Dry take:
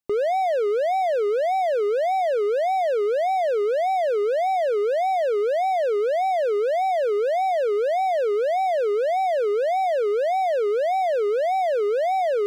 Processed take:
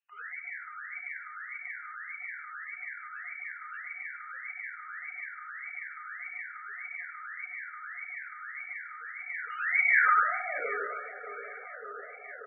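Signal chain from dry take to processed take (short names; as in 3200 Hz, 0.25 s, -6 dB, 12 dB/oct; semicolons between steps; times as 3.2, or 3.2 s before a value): 3.62–4.02 high shelf 3900 Hz -11 dB; limiter -28.5 dBFS, peak gain reduction 11.5 dB; sine folder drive 9 dB, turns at -28.5 dBFS; band-pass sweep 6700 Hz -> 240 Hz, 9.18–11.01; feedback echo 0.772 s, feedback 35%, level -15 dB; reverb RT60 1.0 s, pre-delay 14 ms, DRR -5 dB; crackling interface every 0.52 s, samples 128, zero, from 0.72; gain +2.5 dB; MP3 8 kbps 22050 Hz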